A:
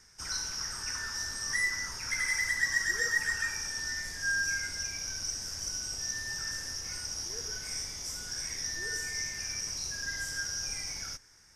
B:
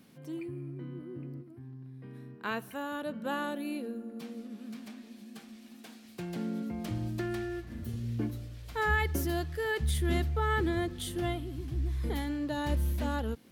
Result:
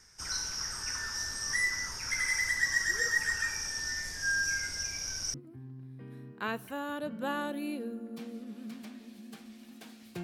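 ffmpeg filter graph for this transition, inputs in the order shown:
-filter_complex "[0:a]apad=whole_dur=10.23,atrim=end=10.23,atrim=end=5.342[a];[1:a]atrim=start=1.368:end=6.26[b];[a][b]acrossfade=d=0.004:c1=hsin:c2=hsin"

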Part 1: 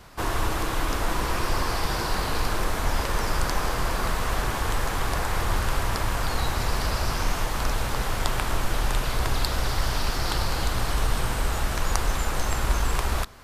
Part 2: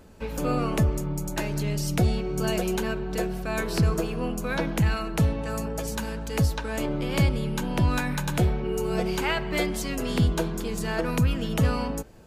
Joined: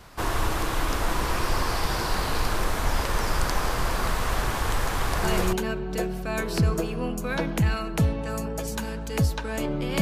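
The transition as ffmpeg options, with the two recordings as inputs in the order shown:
-filter_complex "[0:a]apad=whole_dur=10.01,atrim=end=10.01,atrim=end=5.53,asetpts=PTS-STARTPTS[a];[1:a]atrim=start=2.43:end=7.21,asetpts=PTS-STARTPTS[b];[a][b]acrossfade=d=0.3:c1=log:c2=log"

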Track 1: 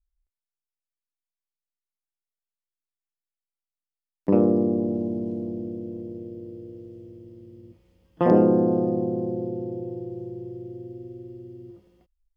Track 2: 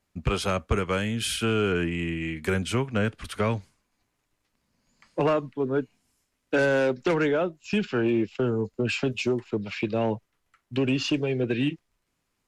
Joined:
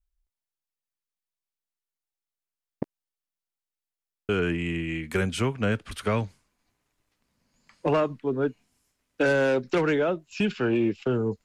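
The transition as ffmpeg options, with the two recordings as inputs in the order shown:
-filter_complex "[0:a]apad=whole_dur=11.44,atrim=end=11.44,asplit=2[a][b];[a]atrim=end=2.822[c];[b]atrim=start=2.818:end=4.292,asetpts=PTS-STARTPTS,areverse[d];[1:a]atrim=start=1.618:end=8.77[e];[c][d]acrossfade=d=0.004:c1=hsin:c2=hsin[f];[f][e]acrossfade=d=0.004:c1=hsin:c2=hsin"

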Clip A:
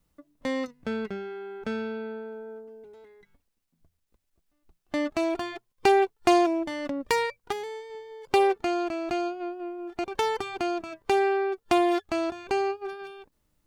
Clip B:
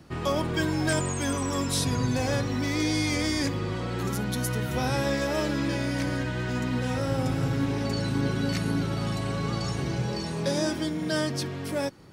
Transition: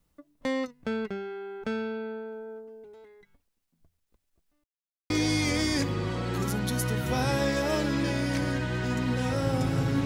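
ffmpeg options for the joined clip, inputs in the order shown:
-filter_complex "[0:a]apad=whole_dur=10.05,atrim=end=10.05,asplit=2[a][b];[a]atrim=end=4.64,asetpts=PTS-STARTPTS,afade=t=out:st=4.636:d=0.004:c=hsin[c];[b]atrim=start=4.64:end=5.1,asetpts=PTS-STARTPTS,volume=0[d];[1:a]atrim=start=2.75:end=7.7,asetpts=PTS-STARTPTS,afade=t=in:d=0.004:c=hsin[e];[c][d][e]concat=n=3:v=0:a=1"

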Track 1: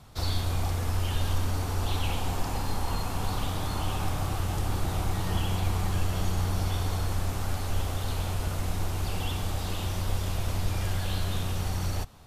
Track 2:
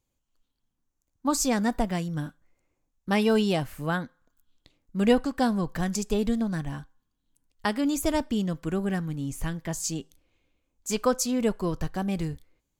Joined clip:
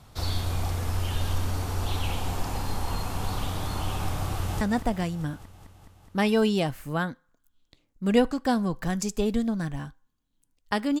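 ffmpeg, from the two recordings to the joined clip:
-filter_complex "[0:a]apad=whole_dur=11,atrim=end=11,atrim=end=4.612[a];[1:a]atrim=start=1.538:end=7.93[b];[a][b]acrossfade=d=0.004:c1=hsin:c2=hsin,asplit=2[c][d];[d]afade=t=in:st=4.34:d=0.01,afade=t=out:st=4.61:d=0.01,aecho=0:1:210|420|630|840|1050|1260|1470|1680|1890|2100|2310|2520:0.298538|0.223904|0.167928|0.125946|0.0944594|0.0708445|0.0531334|0.03985|0.0298875|0.0224157|0.0168117|0.0126088[e];[c][e]amix=inputs=2:normalize=0"

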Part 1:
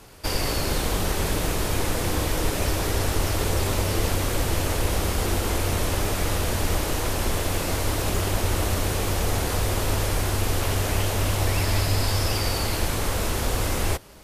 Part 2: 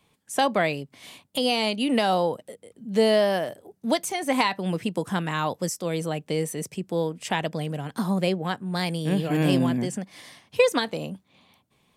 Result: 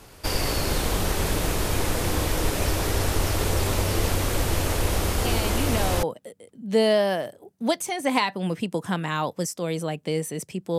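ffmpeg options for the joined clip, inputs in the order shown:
-filter_complex "[1:a]asplit=2[a][b];[0:a]apad=whole_dur=10.78,atrim=end=10.78,atrim=end=6.032[c];[b]atrim=start=2.258:end=7.01[d];[a]atrim=start=1.48:end=2.26,asetpts=PTS-STARTPTS,volume=-7dB,afade=t=in:d=0.004:c=hsin,afade=t=out:st=0.776:d=0.004:c=hsin,adelay=231525S[e];[c][d]acrossfade=d=0.004:c1=hsin:c2=hsin[f];[f][e]amix=inputs=2:normalize=0"

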